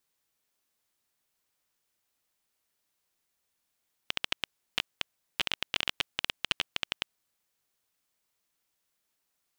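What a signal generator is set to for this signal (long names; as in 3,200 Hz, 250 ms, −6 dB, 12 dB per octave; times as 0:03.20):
Geiger counter clicks 12 per second −9.5 dBFS 3.22 s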